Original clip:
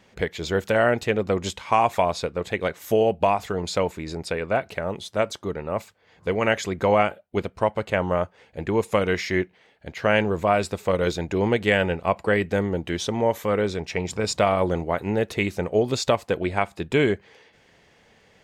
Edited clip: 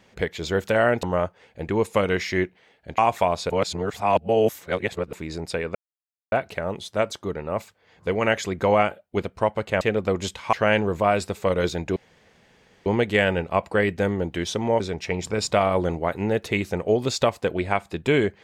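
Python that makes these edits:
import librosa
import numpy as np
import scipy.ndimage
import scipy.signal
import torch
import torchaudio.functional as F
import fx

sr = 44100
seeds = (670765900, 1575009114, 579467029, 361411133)

y = fx.edit(x, sr, fx.swap(start_s=1.03, length_s=0.72, other_s=8.01, other_length_s=1.95),
    fx.reverse_span(start_s=2.27, length_s=1.63),
    fx.insert_silence(at_s=4.52, length_s=0.57),
    fx.insert_room_tone(at_s=11.39, length_s=0.9),
    fx.cut(start_s=13.33, length_s=0.33), tone=tone)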